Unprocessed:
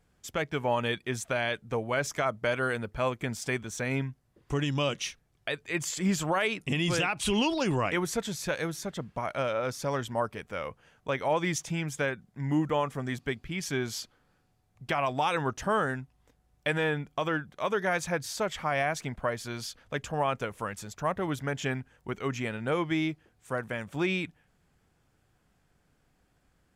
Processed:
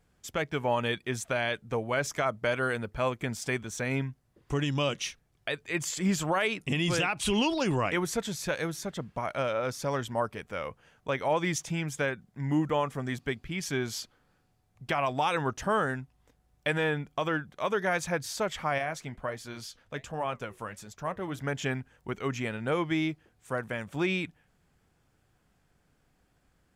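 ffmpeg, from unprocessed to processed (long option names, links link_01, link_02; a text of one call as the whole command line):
ffmpeg -i in.wav -filter_complex "[0:a]asettb=1/sr,asplit=3[link_01][link_02][link_03];[link_01]atrim=end=18.784[link_04];[link_02]atrim=start=18.78:end=21.39,asetpts=PTS-STARTPTS,afade=type=in:duration=0.004:curve=qsin,afade=type=out:start_time=2.606:duration=0.004:curve=qsin,flanger=delay=3.3:depth=6.4:regen=-73:speed=1.4:shape=triangular[link_05];[link_03]atrim=start=21.386[link_06];[link_04][link_05]acrossfade=duration=0.004:curve1=hsin:curve2=qsin[link_07];[link_07][link_06]acrossfade=duration=0.004:curve1=qsin:curve2=hsin" out.wav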